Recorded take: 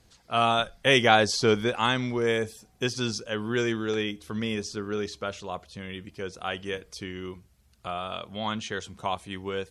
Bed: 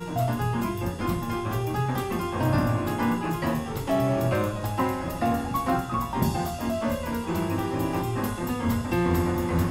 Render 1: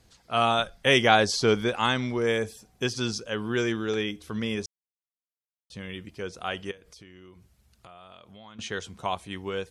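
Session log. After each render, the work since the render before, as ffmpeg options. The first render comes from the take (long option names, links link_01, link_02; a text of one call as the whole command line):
ffmpeg -i in.wav -filter_complex "[0:a]asettb=1/sr,asplit=3[link_01][link_02][link_03];[link_01]atrim=end=6.714[link_04];[link_02]atrim=start=6.71:end=8.59,asetpts=PTS-STARTPTS,afade=type=in:duration=0.004:curve=qsin,afade=type=out:start_time=1.876:duration=0.004:curve=qsin,acompressor=threshold=-48dB:ratio=4:attack=3.2:release=140:knee=1:detection=peak[link_05];[link_03]atrim=start=8.586[link_06];[link_04][link_05]acrossfade=duration=0.004:curve1=hsin:curve2=qsin[link_07];[link_07][link_06]acrossfade=duration=0.004:curve1=qsin:curve2=hsin,asplit=3[link_08][link_09][link_10];[link_08]atrim=end=4.66,asetpts=PTS-STARTPTS,afade=type=out:start_time=4.656:duration=0.004:curve=hsin[link_11];[link_09]atrim=start=4.66:end=5.7,asetpts=PTS-STARTPTS,volume=0[link_12];[link_10]atrim=start=5.7,asetpts=PTS-STARTPTS,afade=type=in:duration=0.004:curve=hsin[link_13];[link_11][link_12][link_13]concat=n=3:v=0:a=1" out.wav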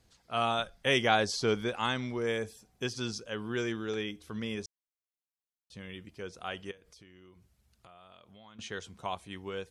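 ffmpeg -i in.wav -af "volume=-6.5dB" out.wav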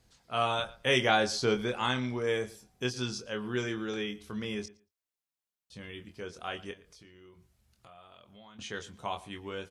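ffmpeg -i in.wav -filter_complex "[0:a]asplit=2[link_01][link_02];[link_02]adelay=24,volume=-6.5dB[link_03];[link_01][link_03]amix=inputs=2:normalize=0,asplit=2[link_04][link_05];[link_05]adelay=114,lowpass=frequency=3100:poles=1,volume=-19dB,asplit=2[link_06][link_07];[link_07]adelay=114,lowpass=frequency=3100:poles=1,volume=0.18[link_08];[link_04][link_06][link_08]amix=inputs=3:normalize=0" out.wav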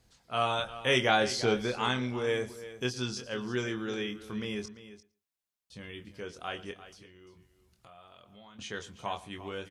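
ffmpeg -i in.wav -af "aecho=1:1:345:0.188" out.wav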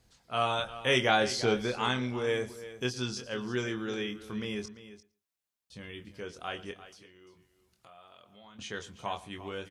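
ffmpeg -i in.wav -filter_complex "[0:a]asettb=1/sr,asplit=3[link_01][link_02][link_03];[link_01]atrim=end=6.864[link_04];[link_02]atrim=start=6.86:end=8.44,asetpts=PTS-STARTPTS,afade=type=in:duration=0.004:curve=qsin,afade=type=out:start_time=1.576:duration=0.004:curve=qsin,lowshelf=frequency=140:gain=-10.5[link_05];[link_03]atrim=start=8.436[link_06];[link_04][link_05]acrossfade=duration=0.004:curve1=hsin:curve2=qsin[link_07];[link_07][link_06]acrossfade=duration=0.004:curve1=qsin:curve2=hsin" out.wav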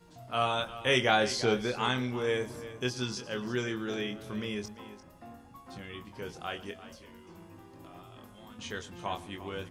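ffmpeg -i in.wav -i bed.wav -filter_complex "[1:a]volume=-24.5dB[link_01];[0:a][link_01]amix=inputs=2:normalize=0" out.wav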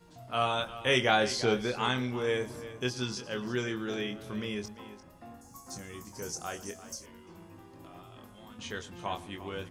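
ffmpeg -i in.wav -filter_complex "[0:a]asettb=1/sr,asplit=3[link_01][link_02][link_03];[link_01]atrim=end=5.414[link_04];[link_02]atrim=start=5.41:end=7.06,asetpts=PTS-STARTPTS,afade=type=in:duration=0.004:curve=qsin,afade=type=out:start_time=1.646:duration=0.004:curve=qsin,highshelf=frequency=4500:width_type=q:width=3:gain=12[link_05];[link_03]atrim=start=7.056[link_06];[link_04][link_05]acrossfade=duration=0.004:curve1=hsin:curve2=qsin[link_07];[link_07][link_06]acrossfade=duration=0.004:curve1=qsin:curve2=hsin" out.wav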